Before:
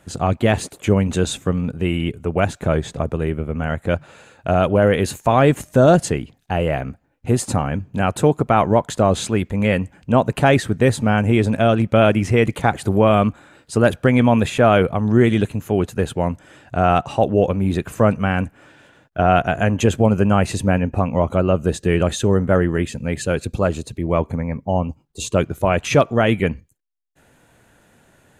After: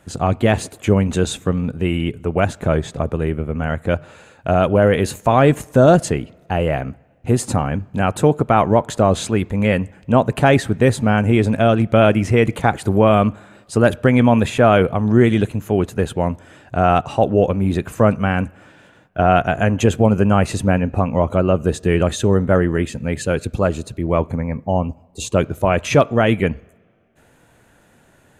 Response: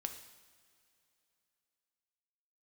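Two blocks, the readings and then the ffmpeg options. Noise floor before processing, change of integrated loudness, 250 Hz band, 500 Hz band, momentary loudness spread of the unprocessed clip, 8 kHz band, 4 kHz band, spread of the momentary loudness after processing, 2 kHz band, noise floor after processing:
−57 dBFS, +1.0 dB, +1.0 dB, +1.0 dB, 9 LU, 0.0 dB, 0.0 dB, 9 LU, +0.5 dB, −54 dBFS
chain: -filter_complex "[0:a]asplit=2[link_01][link_02];[1:a]atrim=start_sample=2205,lowpass=2900[link_03];[link_02][link_03]afir=irnorm=-1:irlink=0,volume=-14dB[link_04];[link_01][link_04]amix=inputs=2:normalize=0"

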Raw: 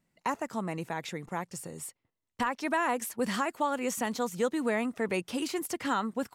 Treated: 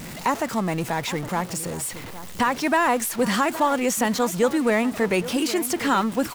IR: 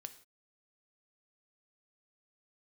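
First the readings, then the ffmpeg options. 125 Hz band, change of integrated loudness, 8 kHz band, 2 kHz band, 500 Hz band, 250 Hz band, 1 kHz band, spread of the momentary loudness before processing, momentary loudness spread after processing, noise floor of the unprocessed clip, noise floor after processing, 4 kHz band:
+11.0 dB, +9.0 dB, +11.0 dB, +9.0 dB, +9.0 dB, +9.5 dB, +9.0 dB, 8 LU, 7 LU, −84 dBFS, −36 dBFS, +10.5 dB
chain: -filter_complex "[0:a]aeval=exprs='val(0)+0.5*0.0133*sgn(val(0))':channel_layout=same,asplit=2[link_01][link_02];[link_02]adelay=816.3,volume=-14dB,highshelf=frequency=4000:gain=-18.4[link_03];[link_01][link_03]amix=inputs=2:normalize=0,volume=7.5dB"

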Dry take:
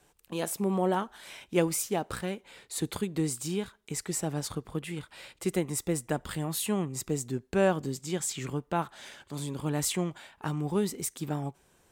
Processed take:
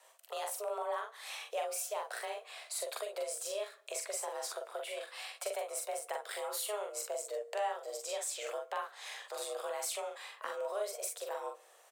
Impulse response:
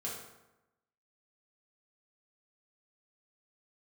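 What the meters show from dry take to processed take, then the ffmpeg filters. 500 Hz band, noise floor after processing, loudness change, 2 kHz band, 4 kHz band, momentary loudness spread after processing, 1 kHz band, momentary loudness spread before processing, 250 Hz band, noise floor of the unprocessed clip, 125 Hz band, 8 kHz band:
−5.5 dB, −62 dBFS, −7.0 dB, −4.5 dB, −3.5 dB, 6 LU, −3.5 dB, 11 LU, below −30 dB, −66 dBFS, below −40 dB, −5.0 dB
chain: -filter_complex "[0:a]highpass=frequency=270:width=0.5412,highpass=frequency=270:width=1.3066,acompressor=threshold=-41dB:ratio=3,afreqshift=210,aecho=1:1:43|58:0.668|0.237,asplit=2[link_01][link_02];[1:a]atrim=start_sample=2205[link_03];[link_02][link_03]afir=irnorm=-1:irlink=0,volume=-18.5dB[link_04];[link_01][link_04]amix=inputs=2:normalize=0,volume=1dB"

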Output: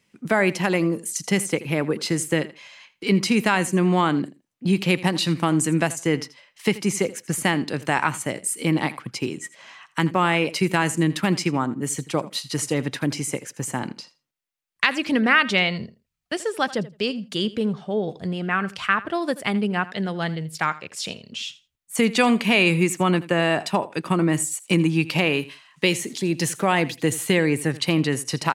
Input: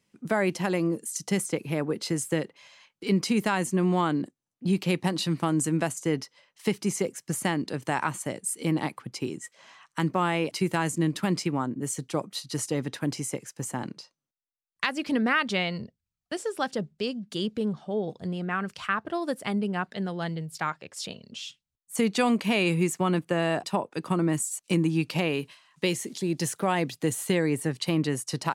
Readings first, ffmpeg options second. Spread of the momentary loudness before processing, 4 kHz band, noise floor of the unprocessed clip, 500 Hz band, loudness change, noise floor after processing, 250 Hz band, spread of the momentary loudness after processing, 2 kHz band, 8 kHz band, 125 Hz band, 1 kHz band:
10 LU, +7.5 dB, below −85 dBFS, +5.0 dB, +5.5 dB, −69 dBFS, +4.5 dB, 10 LU, +8.5 dB, +5.0 dB, +4.5 dB, +5.5 dB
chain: -af "equalizer=frequency=2300:width=1.1:gain=5,aecho=1:1:82|164:0.126|0.0201,volume=4.5dB"

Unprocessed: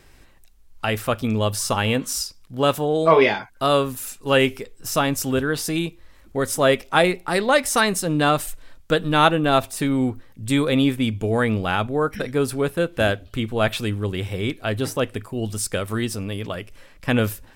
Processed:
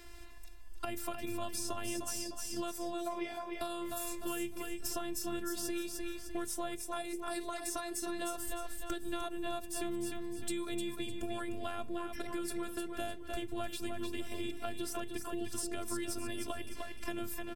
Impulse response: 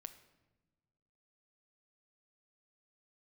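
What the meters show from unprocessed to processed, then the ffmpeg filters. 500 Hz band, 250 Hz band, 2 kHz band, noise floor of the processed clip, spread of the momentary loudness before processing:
−19.5 dB, −16.0 dB, −20.5 dB, −44 dBFS, 10 LU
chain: -filter_complex "[0:a]bandreject=frequency=60:width_type=h:width=6,bandreject=frequency=120:width_type=h:width=6,bandreject=frequency=180:width_type=h:width=6,bandreject=frequency=240:width_type=h:width=6,bandreject=frequency=300:width_type=h:width=6,bandreject=frequency=360:width_type=h:width=6,bandreject=frequency=420:width_type=h:width=6,acompressor=threshold=-30dB:ratio=4,afftfilt=real='hypot(re,im)*cos(PI*b)':imag='0':win_size=512:overlap=0.75,asplit=2[link_01][link_02];[link_02]aecho=0:1:303|606|909|1212:0.398|0.143|0.0516|0.0186[link_03];[link_01][link_03]amix=inputs=2:normalize=0,acrossover=split=240|950|5400[link_04][link_05][link_06][link_07];[link_04]acompressor=threshold=-40dB:ratio=4[link_08];[link_05]acompressor=threshold=-44dB:ratio=4[link_09];[link_06]acompressor=threshold=-50dB:ratio=4[link_10];[link_07]acompressor=threshold=-41dB:ratio=4[link_11];[link_08][link_09][link_10][link_11]amix=inputs=4:normalize=0,volume=3dB"

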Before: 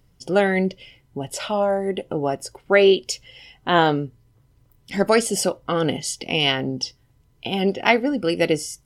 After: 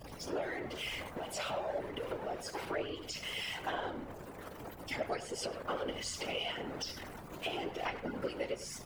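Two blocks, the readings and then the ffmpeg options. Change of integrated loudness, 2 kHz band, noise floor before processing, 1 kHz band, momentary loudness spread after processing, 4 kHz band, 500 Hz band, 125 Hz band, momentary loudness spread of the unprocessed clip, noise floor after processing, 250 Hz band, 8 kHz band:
−18.0 dB, −16.0 dB, −60 dBFS, −15.5 dB, 7 LU, −14.5 dB, −18.0 dB, −19.5 dB, 13 LU, −49 dBFS, −20.0 dB, −15.5 dB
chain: -filter_complex "[0:a]aeval=exprs='val(0)+0.5*0.075*sgn(val(0))':channel_layout=same,afftdn=noise_reduction=13:noise_floor=-38,highpass=400,acrossover=split=6500[link_01][link_02];[link_02]acompressor=threshold=-42dB:ratio=4:attack=1:release=60[link_03];[link_01][link_03]amix=inputs=2:normalize=0,agate=range=-33dB:threshold=-37dB:ratio=3:detection=peak,equalizer=frequency=4900:width_type=o:width=1.7:gain=-4.5,acompressor=threshold=-27dB:ratio=6,aeval=exprs='val(0)+0.00708*(sin(2*PI*60*n/s)+sin(2*PI*2*60*n/s)/2+sin(2*PI*3*60*n/s)/3+sin(2*PI*4*60*n/s)/4+sin(2*PI*5*60*n/s)/5)':channel_layout=same,flanger=delay=3.4:depth=5.1:regen=-4:speed=1:shape=sinusoidal,afftfilt=real='hypot(re,im)*cos(2*PI*random(0))':imag='hypot(re,im)*sin(2*PI*random(1))':win_size=512:overlap=0.75,asplit=2[link_04][link_05];[link_05]adelay=100,highpass=300,lowpass=3400,asoftclip=type=hard:threshold=-33.5dB,volume=-11dB[link_06];[link_04][link_06]amix=inputs=2:normalize=0,volume=1dB"

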